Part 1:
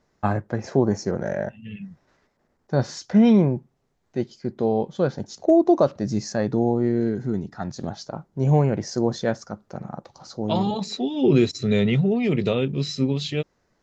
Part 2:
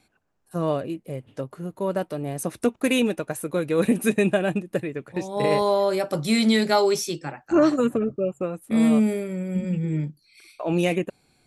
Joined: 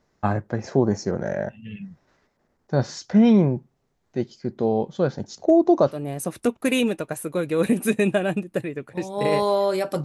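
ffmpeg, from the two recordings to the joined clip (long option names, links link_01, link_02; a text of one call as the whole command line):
ffmpeg -i cue0.wav -i cue1.wav -filter_complex "[0:a]apad=whole_dur=10.04,atrim=end=10.04,atrim=end=5.97,asetpts=PTS-STARTPTS[link_01];[1:a]atrim=start=2.06:end=6.23,asetpts=PTS-STARTPTS[link_02];[link_01][link_02]acrossfade=duration=0.1:curve1=tri:curve2=tri" out.wav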